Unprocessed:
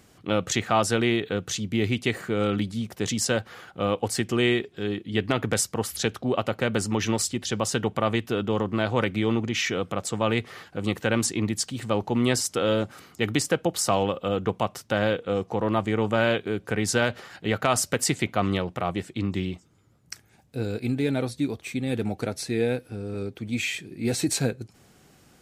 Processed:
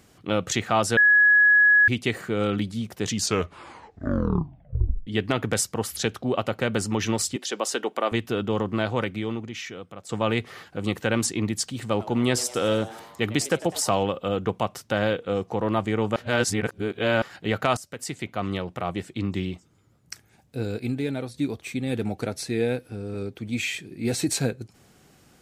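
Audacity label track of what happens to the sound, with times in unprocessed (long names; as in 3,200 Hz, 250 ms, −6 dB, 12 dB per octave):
0.970000	1.880000	beep over 1,680 Hz −13 dBFS
3.040000	3.040000	tape stop 2.03 s
7.360000	8.120000	high-pass filter 290 Hz 24 dB per octave
8.800000	10.090000	fade out quadratic, to −12.5 dB
11.800000	13.890000	echo with shifted repeats 101 ms, feedback 62%, per repeat +120 Hz, level −18.5 dB
16.160000	17.220000	reverse
17.770000	19.520000	fade in equal-power, from −18.5 dB
20.740000	21.340000	fade out, to −6.5 dB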